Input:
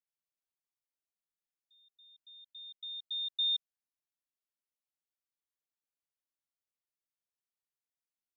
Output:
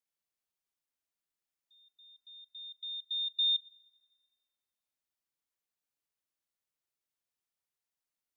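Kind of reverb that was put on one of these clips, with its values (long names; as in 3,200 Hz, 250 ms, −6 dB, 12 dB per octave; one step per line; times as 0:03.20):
four-comb reverb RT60 1.5 s, combs from 32 ms, DRR 20 dB
level +2 dB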